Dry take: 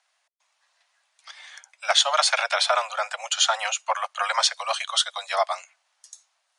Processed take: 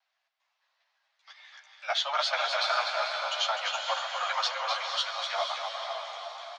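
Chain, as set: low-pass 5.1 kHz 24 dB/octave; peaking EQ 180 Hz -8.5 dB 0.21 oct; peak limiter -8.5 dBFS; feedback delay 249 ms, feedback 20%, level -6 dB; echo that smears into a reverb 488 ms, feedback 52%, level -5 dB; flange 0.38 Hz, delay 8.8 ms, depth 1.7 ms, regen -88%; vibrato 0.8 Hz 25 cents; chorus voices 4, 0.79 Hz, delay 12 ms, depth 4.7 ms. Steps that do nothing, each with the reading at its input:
peaking EQ 180 Hz: input has nothing below 450 Hz

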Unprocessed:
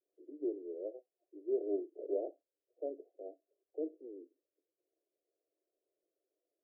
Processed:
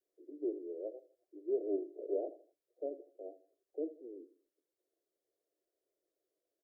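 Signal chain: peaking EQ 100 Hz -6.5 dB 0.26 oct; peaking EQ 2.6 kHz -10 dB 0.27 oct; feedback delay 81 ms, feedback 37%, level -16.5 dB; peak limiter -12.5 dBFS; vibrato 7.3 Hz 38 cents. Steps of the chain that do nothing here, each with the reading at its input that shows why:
peaking EQ 100 Hz: input has nothing below 250 Hz; peaking EQ 2.6 kHz: input has nothing above 760 Hz; peak limiter -12.5 dBFS: peak at its input -24.5 dBFS

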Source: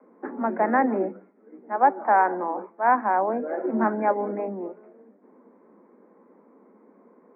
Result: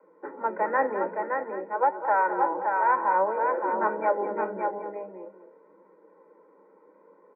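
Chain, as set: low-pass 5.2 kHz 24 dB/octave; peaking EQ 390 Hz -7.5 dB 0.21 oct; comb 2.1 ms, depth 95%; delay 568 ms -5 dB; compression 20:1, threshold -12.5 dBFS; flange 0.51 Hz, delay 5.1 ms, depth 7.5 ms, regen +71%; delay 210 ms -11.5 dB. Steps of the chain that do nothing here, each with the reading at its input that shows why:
low-pass 5.2 kHz: input has nothing above 1.9 kHz

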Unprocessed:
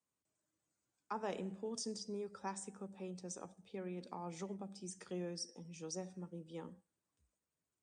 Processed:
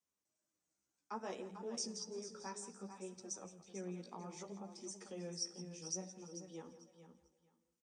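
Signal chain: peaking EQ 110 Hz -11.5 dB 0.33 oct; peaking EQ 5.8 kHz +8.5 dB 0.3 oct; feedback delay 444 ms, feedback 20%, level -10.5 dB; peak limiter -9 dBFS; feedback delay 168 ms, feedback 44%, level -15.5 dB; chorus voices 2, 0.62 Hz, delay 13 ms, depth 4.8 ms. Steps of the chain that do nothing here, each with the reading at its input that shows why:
peak limiter -9 dBFS: peak at its input -24.5 dBFS

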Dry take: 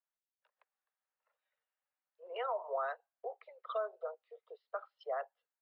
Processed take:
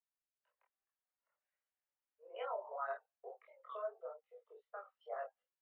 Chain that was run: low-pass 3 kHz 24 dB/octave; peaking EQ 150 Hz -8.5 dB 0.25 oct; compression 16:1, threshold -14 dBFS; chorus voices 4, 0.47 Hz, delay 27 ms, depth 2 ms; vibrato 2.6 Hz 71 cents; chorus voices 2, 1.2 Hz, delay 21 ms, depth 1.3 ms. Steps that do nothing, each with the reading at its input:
peaking EQ 150 Hz: input has nothing below 360 Hz; compression, threshold -14 dBFS: peak at its input -25.5 dBFS

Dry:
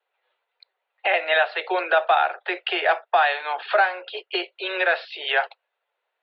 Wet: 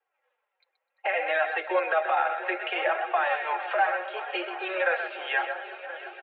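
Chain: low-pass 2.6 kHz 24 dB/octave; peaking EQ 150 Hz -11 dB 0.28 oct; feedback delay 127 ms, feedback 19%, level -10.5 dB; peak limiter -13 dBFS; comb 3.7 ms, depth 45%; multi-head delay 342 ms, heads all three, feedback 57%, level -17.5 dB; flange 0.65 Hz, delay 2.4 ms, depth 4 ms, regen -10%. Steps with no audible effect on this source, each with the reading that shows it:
peaking EQ 150 Hz: input has nothing below 320 Hz

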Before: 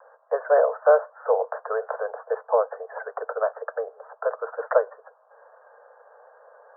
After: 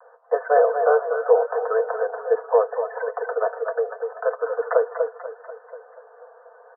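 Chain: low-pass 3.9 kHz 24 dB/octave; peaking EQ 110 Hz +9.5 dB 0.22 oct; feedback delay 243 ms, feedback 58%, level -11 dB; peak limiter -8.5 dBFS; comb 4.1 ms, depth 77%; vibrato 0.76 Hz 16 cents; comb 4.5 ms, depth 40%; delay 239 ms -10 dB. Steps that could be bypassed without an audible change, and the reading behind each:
low-pass 3.9 kHz: input has nothing above 1.8 kHz; peaking EQ 110 Hz: input has nothing below 380 Hz

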